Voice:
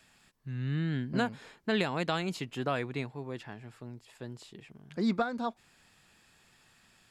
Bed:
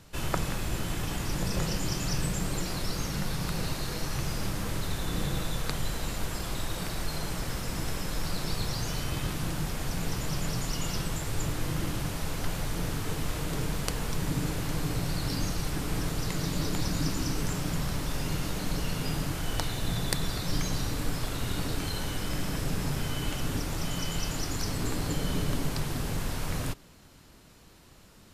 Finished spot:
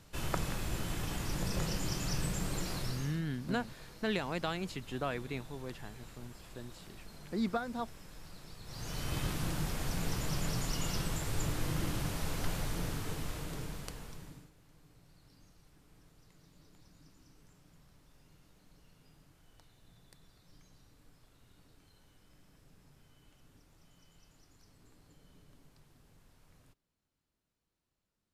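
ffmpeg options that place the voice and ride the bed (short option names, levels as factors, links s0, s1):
-filter_complex "[0:a]adelay=2350,volume=0.596[s0];[1:a]volume=3.55,afade=t=out:st=2.75:d=0.47:silence=0.188365,afade=t=in:st=8.64:d=0.53:silence=0.158489,afade=t=out:st=12.51:d=1.99:silence=0.0375837[s1];[s0][s1]amix=inputs=2:normalize=0"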